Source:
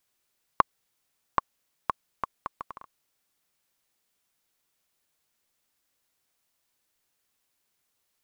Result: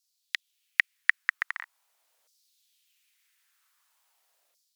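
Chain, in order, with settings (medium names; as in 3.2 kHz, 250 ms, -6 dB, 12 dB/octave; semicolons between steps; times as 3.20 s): speed mistake 45 rpm record played at 78 rpm; LFO high-pass saw down 0.44 Hz 540–5200 Hz; level rider gain up to 7 dB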